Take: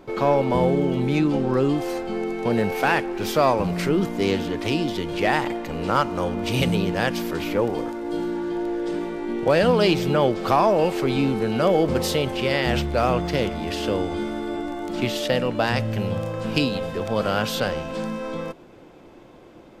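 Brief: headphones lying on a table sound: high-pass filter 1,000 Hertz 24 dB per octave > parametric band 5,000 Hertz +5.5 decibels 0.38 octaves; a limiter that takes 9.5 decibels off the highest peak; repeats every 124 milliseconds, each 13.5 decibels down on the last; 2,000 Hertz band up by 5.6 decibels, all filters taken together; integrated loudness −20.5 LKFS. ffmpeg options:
ffmpeg -i in.wav -af "equalizer=frequency=2000:width_type=o:gain=7,alimiter=limit=-13dB:level=0:latency=1,highpass=frequency=1000:width=0.5412,highpass=frequency=1000:width=1.3066,equalizer=frequency=5000:width_type=o:width=0.38:gain=5.5,aecho=1:1:124|248:0.211|0.0444,volume=9dB" out.wav

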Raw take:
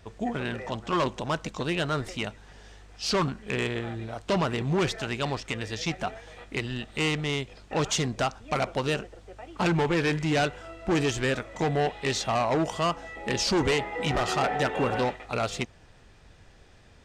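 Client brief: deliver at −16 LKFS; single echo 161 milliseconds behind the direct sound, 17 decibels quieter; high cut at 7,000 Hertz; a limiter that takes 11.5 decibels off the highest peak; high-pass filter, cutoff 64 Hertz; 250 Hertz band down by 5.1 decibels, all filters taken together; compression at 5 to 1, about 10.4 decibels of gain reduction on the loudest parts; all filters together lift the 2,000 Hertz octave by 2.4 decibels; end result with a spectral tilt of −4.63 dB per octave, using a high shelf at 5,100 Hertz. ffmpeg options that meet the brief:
ffmpeg -i in.wav -af "highpass=64,lowpass=7000,equalizer=frequency=250:width_type=o:gain=-8,equalizer=frequency=2000:width_type=o:gain=4.5,highshelf=frequency=5100:gain=-8.5,acompressor=threshold=-34dB:ratio=5,alimiter=level_in=6.5dB:limit=-24dB:level=0:latency=1,volume=-6.5dB,aecho=1:1:161:0.141,volume=24.5dB" out.wav

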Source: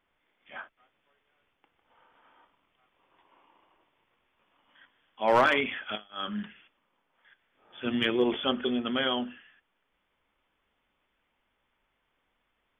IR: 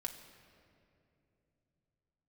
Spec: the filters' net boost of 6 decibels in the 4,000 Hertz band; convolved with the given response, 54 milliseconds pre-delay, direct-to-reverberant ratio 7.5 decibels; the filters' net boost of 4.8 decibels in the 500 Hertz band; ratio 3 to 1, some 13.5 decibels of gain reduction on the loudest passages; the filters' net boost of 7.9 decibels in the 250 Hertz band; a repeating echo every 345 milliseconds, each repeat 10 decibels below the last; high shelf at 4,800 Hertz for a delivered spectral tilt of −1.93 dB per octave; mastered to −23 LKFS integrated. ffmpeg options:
-filter_complex "[0:a]equalizer=frequency=250:width_type=o:gain=8,equalizer=frequency=500:width_type=o:gain=3.5,equalizer=frequency=4000:width_type=o:gain=5.5,highshelf=frequency=4800:gain=6.5,acompressor=threshold=-33dB:ratio=3,aecho=1:1:345|690|1035|1380:0.316|0.101|0.0324|0.0104,asplit=2[link_01][link_02];[1:a]atrim=start_sample=2205,adelay=54[link_03];[link_02][link_03]afir=irnorm=-1:irlink=0,volume=-6dB[link_04];[link_01][link_04]amix=inputs=2:normalize=0,volume=11dB"

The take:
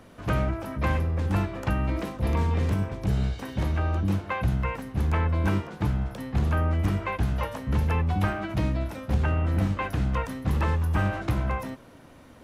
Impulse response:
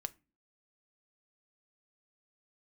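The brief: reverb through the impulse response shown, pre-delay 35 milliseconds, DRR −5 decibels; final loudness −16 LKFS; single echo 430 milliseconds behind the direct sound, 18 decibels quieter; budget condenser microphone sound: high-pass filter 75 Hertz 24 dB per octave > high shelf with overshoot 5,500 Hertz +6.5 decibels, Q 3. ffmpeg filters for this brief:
-filter_complex "[0:a]aecho=1:1:430:0.126,asplit=2[link_01][link_02];[1:a]atrim=start_sample=2205,adelay=35[link_03];[link_02][link_03]afir=irnorm=-1:irlink=0,volume=7dB[link_04];[link_01][link_04]amix=inputs=2:normalize=0,highpass=frequency=75:width=0.5412,highpass=frequency=75:width=1.3066,highshelf=frequency=5500:width_type=q:width=3:gain=6.5,volume=7.5dB"

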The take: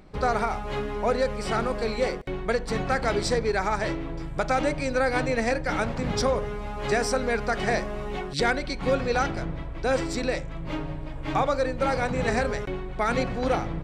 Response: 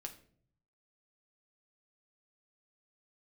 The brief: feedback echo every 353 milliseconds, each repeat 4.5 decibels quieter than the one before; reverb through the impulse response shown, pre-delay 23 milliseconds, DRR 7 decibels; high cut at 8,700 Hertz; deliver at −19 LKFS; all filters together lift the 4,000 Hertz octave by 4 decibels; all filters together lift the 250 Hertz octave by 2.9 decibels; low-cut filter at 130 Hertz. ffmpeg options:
-filter_complex "[0:a]highpass=130,lowpass=8700,equalizer=frequency=250:width_type=o:gain=4,equalizer=frequency=4000:width_type=o:gain=5,aecho=1:1:353|706|1059|1412|1765|2118|2471|2824|3177:0.596|0.357|0.214|0.129|0.0772|0.0463|0.0278|0.0167|0.01,asplit=2[link_01][link_02];[1:a]atrim=start_sample=2205,adelay=23[link_03];[link_02][link_03]afir=irnorm=-1:irlink=0,volume=-3.5dB[link_04];[link_01][link_04]amix=inputs=2:normalize=0,volume=4.5dB"

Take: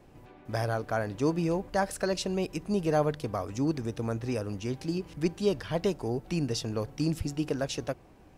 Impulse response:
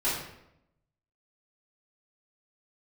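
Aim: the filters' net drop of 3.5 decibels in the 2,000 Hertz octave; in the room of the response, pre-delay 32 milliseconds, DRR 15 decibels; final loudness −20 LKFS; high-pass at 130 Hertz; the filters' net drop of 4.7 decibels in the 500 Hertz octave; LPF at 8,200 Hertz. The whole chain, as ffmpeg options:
-filter_complex "[0:a]highpass=130,lowpass=8200,equalizer=frequency=500:width_type=o:gain=-6,equalizer=frequency=2000:width_type=o:gain=-4.5,asplit=2[link_01][link_02];[1:a]atrim=start_sample=2205,adelay=32[link_03];[link_02][link_03]afir=irnorm=-1:irlink=0,volume=-25dB[link_04];[link_01][link_04]amix=inputs=2:normalize=0,volume=14dB"

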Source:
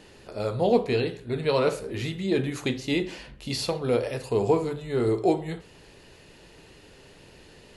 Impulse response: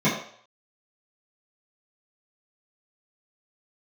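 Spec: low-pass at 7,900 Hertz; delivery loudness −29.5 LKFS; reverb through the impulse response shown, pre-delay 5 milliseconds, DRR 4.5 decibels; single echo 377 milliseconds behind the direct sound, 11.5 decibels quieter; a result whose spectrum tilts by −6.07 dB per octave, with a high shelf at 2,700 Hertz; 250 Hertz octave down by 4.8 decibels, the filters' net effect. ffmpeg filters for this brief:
-filter_complex "[0:a]lowpass=7900,equalizer=frequency=250:width_type=o:gain=-7,highshelf=frequency=2700:gain=-4.5,aecho=1:1:377:0.266,asplit=2[link_01][link_02];[1:a]atrim=start_sample=2205,adelay=5[link_03];[link_02][link_03]afir=irnorm=-1:irlink=0,volume=-21dB[link_04];[link_01][link_04]amix=inputs=2:normalize=0,volume=-3dB"

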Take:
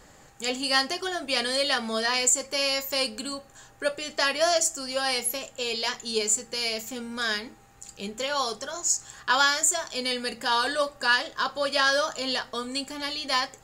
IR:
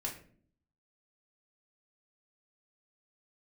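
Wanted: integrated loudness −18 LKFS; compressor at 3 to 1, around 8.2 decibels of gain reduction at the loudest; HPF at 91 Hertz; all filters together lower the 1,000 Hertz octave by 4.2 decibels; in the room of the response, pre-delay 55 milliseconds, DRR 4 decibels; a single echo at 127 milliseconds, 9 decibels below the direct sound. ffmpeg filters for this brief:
-filter_complex "[0:a]highpass=91,equalizer=frequency=1000:width_type=o:gain=-5.5,acompressor=threshold=-29dB:ratio=3,aecho=1:1:127:0.355,asplit=2[link_01][link_02];[1:a]atrim=start_sample=2205,adelay=55[link_03];[link_02][link_03]afir=irnorm=-1:irlink=0,volume=-5dB[link_04];[link_01][link_04]amix=inputs=2:normalize=0,volume=11.5dB"

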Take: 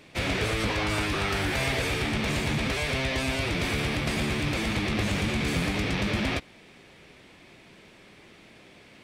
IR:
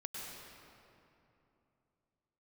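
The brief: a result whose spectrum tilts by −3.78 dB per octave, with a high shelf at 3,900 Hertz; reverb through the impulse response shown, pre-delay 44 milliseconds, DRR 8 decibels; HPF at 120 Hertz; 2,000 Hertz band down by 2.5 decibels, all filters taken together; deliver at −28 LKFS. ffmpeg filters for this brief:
-filter_complex "[0:a]highpass=120,equalizer=frequency=2000:width_type=o:gain=-4.5,highshelf=frequency=3900:gain=5,asplit=2[link_01][link_02];[1:a]atrim=start_sample=2205,adelay=44[link_03];[link_02][link_03]afir=irnorm=-1:irlink=0,volume=-7.5dB[link_04];[link_01][link_04]amix=inputs=2:normalize=0,volume=-0.5dB"

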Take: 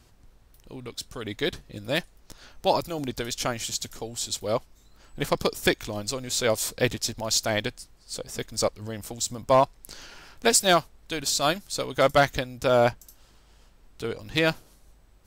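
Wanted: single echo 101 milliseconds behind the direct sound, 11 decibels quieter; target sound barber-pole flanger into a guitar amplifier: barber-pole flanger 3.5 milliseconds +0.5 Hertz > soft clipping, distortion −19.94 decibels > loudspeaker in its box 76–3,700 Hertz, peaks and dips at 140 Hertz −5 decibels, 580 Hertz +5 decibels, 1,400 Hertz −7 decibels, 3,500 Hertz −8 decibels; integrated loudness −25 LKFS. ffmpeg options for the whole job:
ffmpeg -i in.wav -filter_complex "[0:a]aecho=1:1:101:0.282,asplit=2[link_01][link_02];[link_02]adelay=3.5,afreqshift=0.5[link_03];[link_01][link_03]amix=inputs=2:normalize=1,asoftclip=threshold=-14dB,highpass=76,equalizer=frequency=140:width_type=q:width=4:gain=-5,equalizer=frequency=580:width_type=q:width=4:gain=5,equalizer=frequency=1400:width_type=q:width=4:gain=-7,equalizer=frequency=3500:width_type=q:width=4:gain=-8,lowpass=frequency=3700:width=0.5412,lowpass=frequency=3700:width=1.3066,volume=4dB" out.wav

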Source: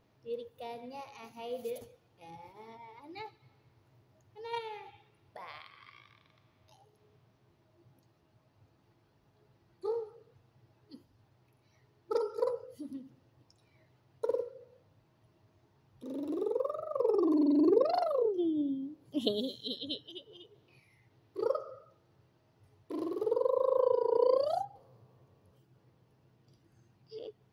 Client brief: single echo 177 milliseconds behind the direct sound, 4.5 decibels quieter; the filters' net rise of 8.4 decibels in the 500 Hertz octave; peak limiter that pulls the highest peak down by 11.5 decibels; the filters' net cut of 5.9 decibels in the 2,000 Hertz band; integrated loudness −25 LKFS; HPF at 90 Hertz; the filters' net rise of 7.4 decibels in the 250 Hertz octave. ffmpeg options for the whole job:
ffmpeg -i in.wav -af "highpass=90,equalizer=frequency=250:width_type=o:gain=6.5,equalizer=frequency=500:width_type=o:gain=8,equalizer=frequency=2000:width_type=o:gain=-8,alimiter=limit=-17.5dB:level=0:latency=1,aecho=1:1:177:0.596,volume=3dB" out.wav

